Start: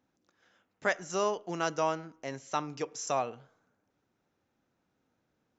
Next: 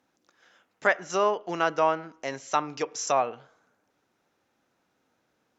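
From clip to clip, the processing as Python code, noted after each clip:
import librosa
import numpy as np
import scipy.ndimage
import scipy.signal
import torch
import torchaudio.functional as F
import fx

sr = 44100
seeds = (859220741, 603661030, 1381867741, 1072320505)

y = fx.env_lowpass_down(x, sr, base_hz=2500.0, full_db=-28.0)
y = fx.low_shelf(y, sr, hz=260.0, db=-11.5)
y = F.gain(torch.from_numpy(y), 8.0).numpy()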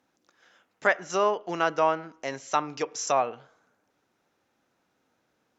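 y = x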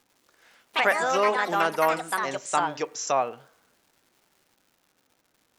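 y = fx.dmg_crackle(x, sr, seeds[0], per_s=280.0, level_db=-51.0)
y = fx.echo_pitch(y, sr, ms=111, semitones=4, count=3, db_per_echo=-3.0)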